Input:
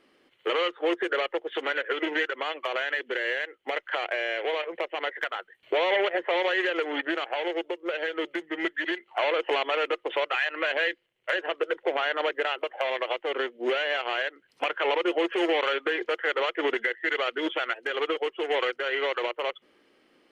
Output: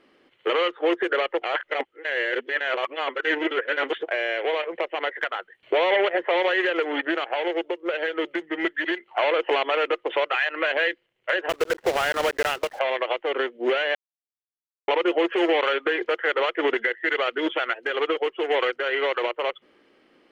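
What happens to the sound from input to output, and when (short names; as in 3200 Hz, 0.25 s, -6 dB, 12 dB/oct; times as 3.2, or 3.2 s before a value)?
1.42–4.08 reverse
11.49–12.81 block floating point 3-bit
13.95–14.88 mute
whole clip: LPF 3700 Hz 6 dB/oct; gain +4 dB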